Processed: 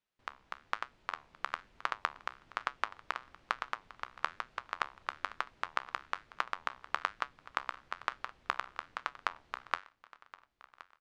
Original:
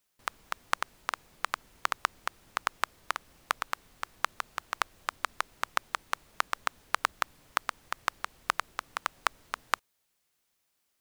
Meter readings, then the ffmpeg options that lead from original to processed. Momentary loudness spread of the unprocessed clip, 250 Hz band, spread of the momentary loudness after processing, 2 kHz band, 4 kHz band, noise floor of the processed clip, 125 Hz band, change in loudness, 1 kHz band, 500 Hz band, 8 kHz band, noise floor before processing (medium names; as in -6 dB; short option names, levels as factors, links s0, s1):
6 LU, -4.0 dB, 11 LU, -4.5 dB, -7.0 dB, -76 dBFS, no reading, -4.5 dB, -4.5 dB, -4.0 dB, -16.5 dB, -77 dBFS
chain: -af "dynaudnorm=f=150:g=11:m=3.76,lowpass=3700,flanger=delay=7.4:depth=8.5:regen=-74:speed=1.1:shape=sinusoidal,aecho=1:1:1071|2142|3213|4284:0.112|0.0505|0.0227|0.0102,volume=0.708"